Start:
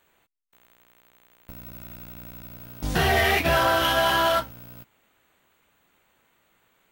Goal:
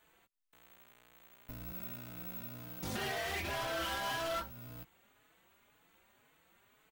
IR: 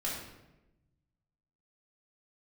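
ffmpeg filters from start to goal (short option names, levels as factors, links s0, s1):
-filter_complex "[0:a]asettb=1/sr,asplit=3[s0][s1][s2];[s0]atrim=end=1.714[s3];[s1]atrim=start=1.71:end=3.29,asetpts=PTS-STARTPTS,afade=t=in:d=0.004:c=qsin,afade=t=out:st=1.576:d=0.004:c=qsin,highpass=110[s4];[s2]atrim=start=3.286[s5];[s3][s4]acrossfade=d=0.004:c1=hsin:c2=qsin[s6];[s6][s5]acrossfade=d=0.004:c1=qsin:c2=hsin,alimiter=limit=0.1:level=0:latency=1:release=451,asoftclip=type=hard:threshold=0.0237,asplit=2[s7][s8];[s8]adelay=4.2,afreqshift=1.9[s9];[s7][s9]amix=inputs=2:normalize=1"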